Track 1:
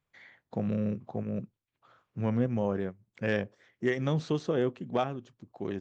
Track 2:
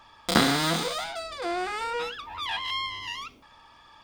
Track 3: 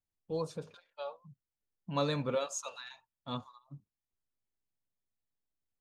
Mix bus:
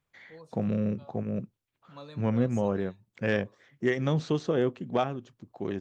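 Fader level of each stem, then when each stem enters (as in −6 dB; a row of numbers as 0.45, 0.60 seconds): +2.0 dB, muted, −14.5 dB; 0.00 s, muted, 0.00 s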